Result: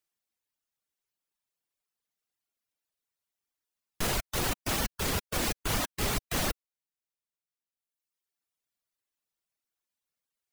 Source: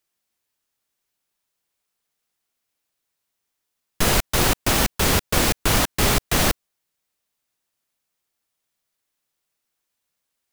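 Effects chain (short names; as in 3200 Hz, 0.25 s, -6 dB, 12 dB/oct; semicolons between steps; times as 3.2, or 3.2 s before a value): transient shaper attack -3 dB, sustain +1 dB; reverb removal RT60 1.5 s; limiter -11.5 dBFS, peak gain reduction 4 dB; gain -7.5 dB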